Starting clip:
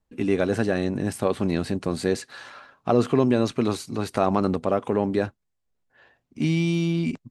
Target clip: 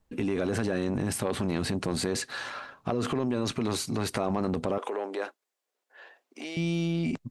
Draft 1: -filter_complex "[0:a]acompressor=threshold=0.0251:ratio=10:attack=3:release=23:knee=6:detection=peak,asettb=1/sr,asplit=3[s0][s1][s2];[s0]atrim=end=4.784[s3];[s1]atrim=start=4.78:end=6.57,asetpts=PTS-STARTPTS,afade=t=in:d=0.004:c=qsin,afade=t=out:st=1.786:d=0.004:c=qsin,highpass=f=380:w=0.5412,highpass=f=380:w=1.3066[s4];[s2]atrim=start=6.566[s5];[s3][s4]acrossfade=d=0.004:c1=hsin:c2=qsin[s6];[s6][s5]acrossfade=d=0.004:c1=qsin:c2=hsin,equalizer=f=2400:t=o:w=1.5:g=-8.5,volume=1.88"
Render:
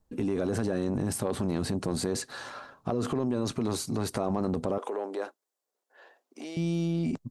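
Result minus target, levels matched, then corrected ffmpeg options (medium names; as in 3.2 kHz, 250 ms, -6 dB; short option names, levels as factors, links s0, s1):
2 kHz band -5.5 dB
-filter_complex "[0:a]acompressor=threshold=0.0251:ratio=10:attack=3:release=23:knee=6:detection=peak,asettb=1/sr,asplit=3[s0][s1][s2];[s0]atrim=end=4.784[s3];[s1]atrim=start=4.78:end=6.57,asetpts=PTS-STARTPTS,afade=t=in:d=0.004:c=qsin,afade=t=out:st=1.786:d=0.004:c=qsin,highpass=f=380:w=0.5412,highpass=f=380:w=1.3066[s4];[s2]atrim=start=6.566[s5];[s3][s4]acrossfade=d=0.004:c1=hsin:c2=qsin[s6];[s6][s5]acrossfade=d=0.004:c1=qsin:c2=hsin,volume=1.88"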